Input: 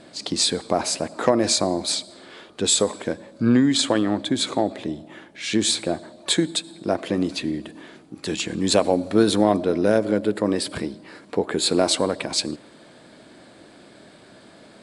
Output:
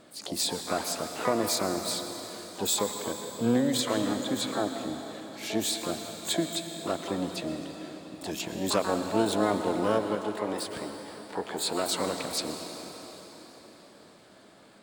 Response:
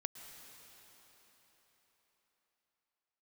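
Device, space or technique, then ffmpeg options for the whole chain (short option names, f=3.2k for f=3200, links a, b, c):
shimmer-style reverb: -filter_complex "[0:a]asplit=2[a][b];[b]asetrate=88200,aresample=44100,atempo=0.5,volume=-6dB[c];[a][c]amix=inputs=2:normalize=0[d];[1:a]atrim=start_sample=2205[e];[d][e]afir=irnorm=-1:irlink=0,asettb=1/sr,asplit=3[f][g][h];[f]atrim=end=10.154[i];[g]atrim=start=10.15:end=11.92,asetpts=PTS-STARTPTS,afade=t=in:d=0.004:c=qsin,afade=t=out:st=1.766:d=0.004:c=qsin,lowshelf=f=460:g=-5.5[j];[h]atrim=start=11.916[k];[i][j]acrossfade=d=0.004:c1=hsin:c2=qsin[l];[l][k]acrossfade=d=0.004:c1=qsin:c2=hsin,volume=-6.5dB"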